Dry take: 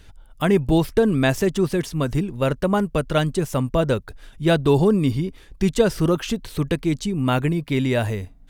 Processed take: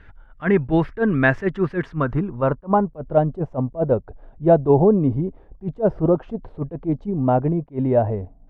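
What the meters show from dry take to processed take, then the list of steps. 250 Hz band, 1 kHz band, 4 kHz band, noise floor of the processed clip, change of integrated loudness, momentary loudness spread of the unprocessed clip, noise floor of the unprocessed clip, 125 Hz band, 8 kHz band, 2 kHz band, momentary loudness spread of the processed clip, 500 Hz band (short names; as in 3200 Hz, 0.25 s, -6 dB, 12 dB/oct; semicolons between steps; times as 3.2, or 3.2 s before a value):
-0.5 dB, +3.5 dB, under -15 dB, -49 dBFS, +0.5 dB, 7 LU, -48 dBFS, -0.5 dB, under -30 dB, +1.5 dB, 10 LU, +1.5 dB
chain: low-pass sweep 1700 Hz -> 720 Hz, 1.73–3.11; attack slew limiter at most 320 dB/s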